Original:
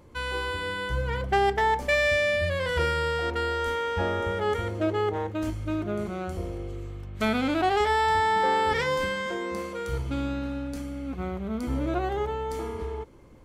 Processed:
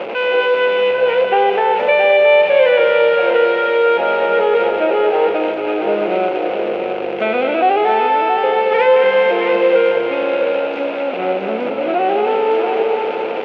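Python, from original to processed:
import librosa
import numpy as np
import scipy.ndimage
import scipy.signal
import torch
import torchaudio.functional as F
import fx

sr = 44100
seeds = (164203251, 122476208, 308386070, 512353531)

p1 = x + 0.5 * 10.0 ** (-26.0 / 20.0) * np.sign(x)
p2 = fx.over_compress(p1, sr, threshold_db=-25.0, ratio=-1.0)
p3 = p1 + (p2 * librosa.db_to_amplitude(-0.5))
p4 = fx.cabinet(p3, sr, low_hz=270.0, low_slope=24, high_hz=2800.0, hz=(280.0, 520.0, 730.0, 1100.0, 1800.0, 2600.0), db=(-10, 8, 5, -7, -6, 7))
p5 = fx.echo_heads(p4, sr, ms=224, heads='first and third', feedback_pct=41, wet_db=-7.5)
y = p5 * librosa.db_to_amplitude(2.0)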